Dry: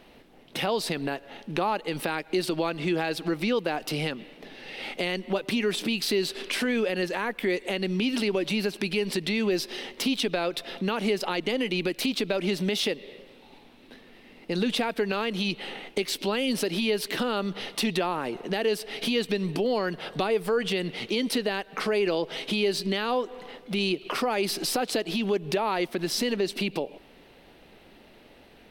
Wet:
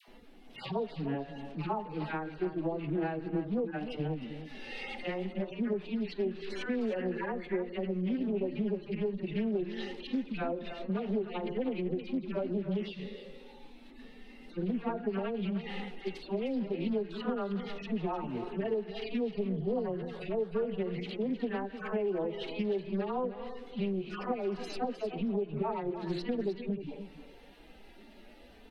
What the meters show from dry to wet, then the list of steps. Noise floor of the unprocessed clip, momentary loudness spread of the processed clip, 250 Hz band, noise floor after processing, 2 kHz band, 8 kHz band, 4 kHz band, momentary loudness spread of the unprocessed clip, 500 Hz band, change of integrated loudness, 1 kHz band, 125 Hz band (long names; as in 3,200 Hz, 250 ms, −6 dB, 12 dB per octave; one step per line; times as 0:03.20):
−54 dBFS, 8 LU, −4.5 dB, −53 dBFS, −13.5 dB, below −25 dB, −18.0 dB, 5 LU, −6.5 dB, −7.0 dB, −8.0 dB, −3.0 dB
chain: harmonic-percussive split with one part muted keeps harmonic
hum removal 175.7 Hz, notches 10
treble cut that deepens with the level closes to 1,600 Hz, closed at −27 dBFS
low-shelf EQ 94 Hz +8 dB
downward compressor 2.5 to 1, threshold −32 dBFS, peak gain reduction 8 dB
all-pass dispersion lows, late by 83 ms, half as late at 850 Hz
on a send: single-tap delay 308 ms −11 dB
on the sum: highs frequency-modulated by the lows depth 0.22 ms